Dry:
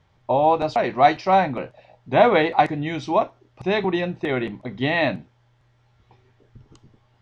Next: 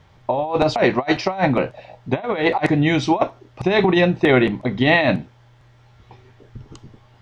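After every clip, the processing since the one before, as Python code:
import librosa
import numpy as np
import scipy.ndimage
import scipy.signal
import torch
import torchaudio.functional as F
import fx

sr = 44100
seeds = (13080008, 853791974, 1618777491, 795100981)

y = fx.over_compress(x, sr, threshold_db=-22.0, ratio=-0.5)
y = y * librosa.db_to_amplitude(6.0)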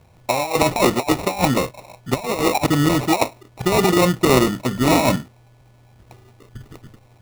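y = fx.sample_hold(x, sr, seeds[0], rate_hz=1600.0, jitter_pct=0)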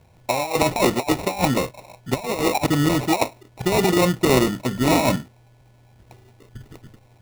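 y = fx.notch(x, sr, hz=1200.0, q=9.3)
y = y * librosa.db_to_amplitude(-2.0)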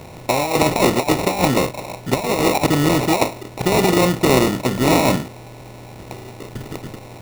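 y = fx.bin_compress(x, sr, power=0.6)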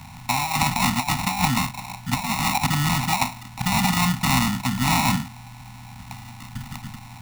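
y = scipy.signal.sosfilt(scipy.signal.ellip(3, 1.0, 60, [240.0, 800.0], 'bandstop', fs=sr, output='sos'), x)
y = y * librosa.db_to_amplitude(-1.0)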